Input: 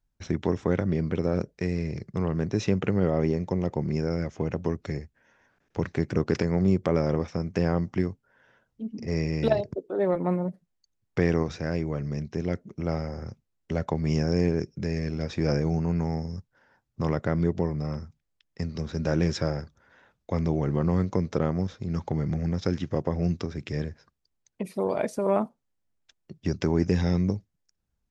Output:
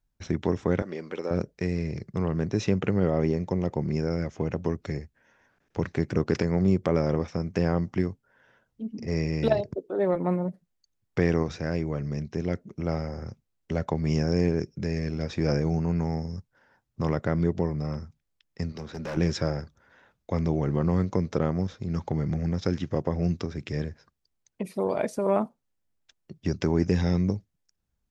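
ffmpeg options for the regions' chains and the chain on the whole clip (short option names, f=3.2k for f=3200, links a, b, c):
-filter_complex "[0:a]asettb=1/sr,asplit=3[a][b][c];[a]atrim=end=0.824[d];[b]atrim=start=0.82:end=1.31,asetpts=PTS-STARTPTS,afade=t=in:d=0.004:c=qsin,afade=t=out:st=0.486:d=0.004:c=qsin,highpass=440,bandreject=f=660:w=9.4[e];[c]atrim=start=1.306[f];[d][e]acrossfade=d=0.004:c1=hsin:c2=qsin[g];[g][f]acrossfade=d=0.004:c1=qsin:c2=hsin,asettb=1/sr,asplit=3[h][i][j];[h]atrim=end=18.724[k];[i]atrim=start=18.72:end=19.17,asetpts=PTS-STARTPTS,afade=t=in:d=0.004:c=qsin,afade=t=out:st=0.446:d=0.004:c=qsin,highpass=61,bass=f=250:g=-7,treble=f=4k:g=-4,volume=30dB,asoftclip=hard,volume=-30dB[l];[j]atrim=start=19.166[m];[k][l]acrossfade=d=0.004:c1=hsin:c2=qsin[n];[n][m]acrossfade=d=0.004:c1=qsin:c2=hsin"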